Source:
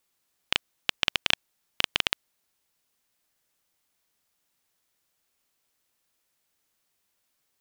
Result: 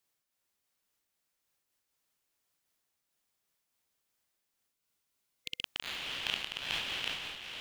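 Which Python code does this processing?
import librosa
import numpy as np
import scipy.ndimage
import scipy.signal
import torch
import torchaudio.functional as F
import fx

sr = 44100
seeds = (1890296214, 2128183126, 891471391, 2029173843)

y = np.flip(x).copy()
y = fx.echo_diffused(y, sr, ms=477, feedback_pct=50, wet_db=-3.5)
y = fx.transient(y, sr, attack_db=-7, sustain_db=4)
y = fx.spec_repair(y, sr, seeds[0], start_s=4.79, length_s=0.81, low_hz=510.0, high_hz=2100.0, source='before')
y = fx.am_noise(y, sr, seeds[1], hz=5.7, depth_pct=55)
y = y * librosa.db_to_amplitude(-4.5)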